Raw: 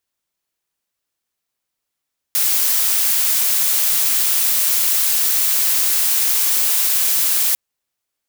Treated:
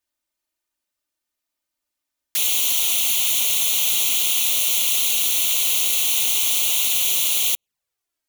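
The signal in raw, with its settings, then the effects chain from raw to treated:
noise blue, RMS −16.5 dBFS 5.20 s
dynamic equaliser 3,000 Hz, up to +7 dB, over −42 dBFS, Q 1.3
flanger swept by the level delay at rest 3.3 ms, full sweep at −18 dBFS

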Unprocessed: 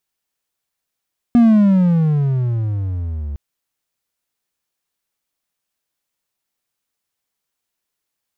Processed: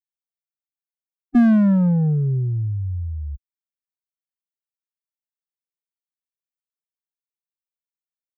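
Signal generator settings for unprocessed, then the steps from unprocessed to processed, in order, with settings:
pitch glide with a swell triangle, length 2.01 s, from 242 Hz, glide −21.5 semitones, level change −16 dB, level −4.5 dB
spectral dynamics exaggerated over time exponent 3
parametric band 1,600 Hz +12.5 dB 0.2 octaves

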